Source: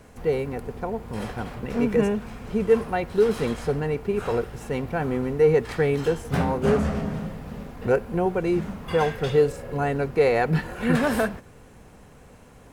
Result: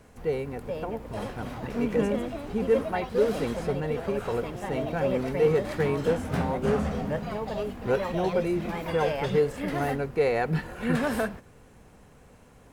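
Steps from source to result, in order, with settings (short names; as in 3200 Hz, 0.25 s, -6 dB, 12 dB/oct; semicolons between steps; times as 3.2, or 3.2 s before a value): echoes that change speed 0.473 s, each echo +3 st, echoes 3, each echo -6 dB; gain -4.5 dB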